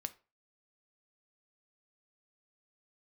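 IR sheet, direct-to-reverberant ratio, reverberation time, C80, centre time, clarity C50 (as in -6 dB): 10.0 dB, 0.35 s, 24.5 dB, 3 ms, 18.5 dB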